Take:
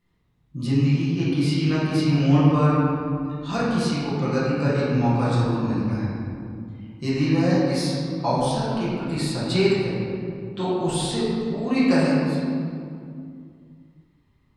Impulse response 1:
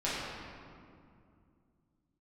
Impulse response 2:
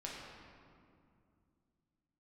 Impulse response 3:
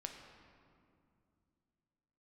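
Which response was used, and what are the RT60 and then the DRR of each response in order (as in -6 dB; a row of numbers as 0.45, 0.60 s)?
1; 2.4, 2.4, 2.5 s; -10.0, -4.5, 3.0 dB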